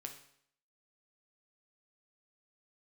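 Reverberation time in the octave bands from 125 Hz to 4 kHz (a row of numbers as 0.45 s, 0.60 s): 0.65 s, 0.65 s, 0.65 s, 0.65 s, 0.65 s, 0.65 s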